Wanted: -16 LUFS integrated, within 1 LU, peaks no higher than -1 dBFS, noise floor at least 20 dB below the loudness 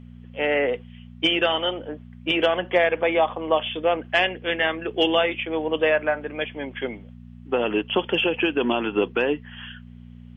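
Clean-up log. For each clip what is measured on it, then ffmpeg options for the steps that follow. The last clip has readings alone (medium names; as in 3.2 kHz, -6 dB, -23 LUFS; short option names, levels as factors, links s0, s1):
hum 60 Hz; highest harmonic 240 Hz; hum level -41 dBFS; loudness -23.0 LUFS; peak level -7.0 dBFS; loudness target -16.0 LUFS
-> -af "bandreject=f=60:t=h:w=4,bandreject=f=120:t=h:w=4,bandreject=f=180:t=h:w=4,bandreject=f=240:t=h:w=4"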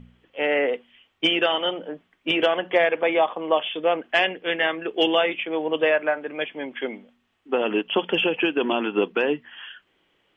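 hum not found; loudness -23.5 LUFS; peak level -7.0 dBFS; loudness target -16.0 LUFS
-> -af "volume=2.37,alimiter=limit=0.891:level=0:latency=1"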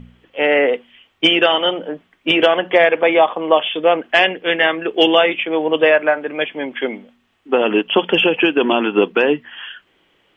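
loudness -16.0 LUFS; peak level -1.0 dBFS; noise floor -61 dBFS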